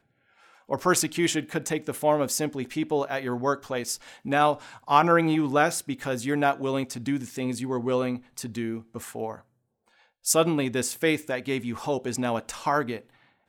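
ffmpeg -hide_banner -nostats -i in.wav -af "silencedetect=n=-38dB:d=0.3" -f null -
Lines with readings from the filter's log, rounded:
silence_start: 0.00
silence_end: 0.69 | silence_duration: 0.69
silence_start: 9.35
silence_end: 10.25 | silence_duration: 0.90
silence_start: 13.00
silence_end: 13.48 | silence_duration: 0.48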